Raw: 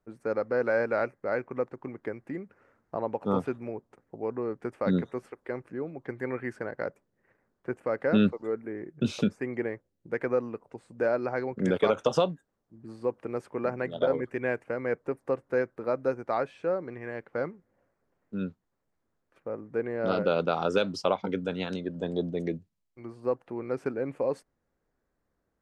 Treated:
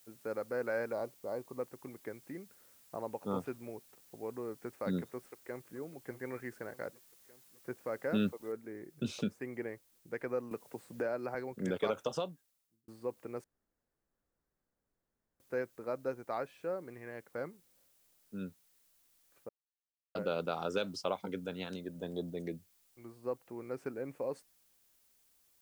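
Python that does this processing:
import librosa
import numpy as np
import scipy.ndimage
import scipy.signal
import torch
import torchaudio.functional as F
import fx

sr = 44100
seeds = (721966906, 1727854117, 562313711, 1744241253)

y = fx.spec_box(x, sr, start_s=0.92, length_s=0.68, low_hz=1200.0, high_hz=3400.0, gain_db=-14)
y = fx.echo_throw(y, sr, start_s=5.15, length_s=0.62, ms=600, feedback_pct=65, wet_db=-13.5)
y = fx.noise_floor_step(y, sr, seeds[0], at_s=8.52, before_db=-61, after_db=-68, tilt_db=0.0)
y = fx.band_squash(y, sr, depth_pct=70, at=(10.51, 11.35))
y = fx.edit(y, sr, fx.fade_out_span(start_s=11.89, length_s=0.99),
    fx.room_tone_fill(start_s=13.44, length_s=1.96),
    fx.silence(start_s=19.49, length_s=0.66), tone=tone)
y = fx.high_shelf(y, sr, hz=5500.0, db=8.5)
y = y * 10.0 ** (-9.0 / 20.0)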